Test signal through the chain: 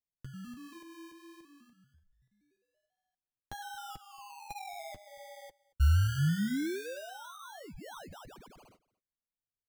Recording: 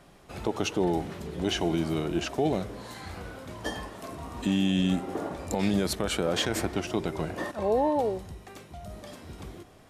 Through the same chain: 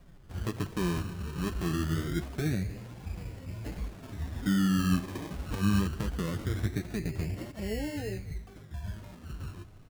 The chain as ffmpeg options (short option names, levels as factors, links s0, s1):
-filter_complex "[0:a]aemphasis=mode=reproduction:type=riaa,acrossover=split=470|3400[s0][s1][s2];[s1]acompressor=threshold=0.0141:ratio=6[s3];[s0][s3][s2]amix=inputs=3:normalize=0,equalizer=f=88:w=0.59:g=4,acrusher=samples=25:mix=1:aa=0.000001:lfo=1:lforange=15:lforate=0.23,flanger=delay=3.8:depth=7.8:regen=-24:speed=1.3:shape=triangular,asplit=2[s4][s5];[s5]aecho=0:1:228:0.0668[s6];[s4][s6]amix=inputs=2:normalize=0,volume=0.422"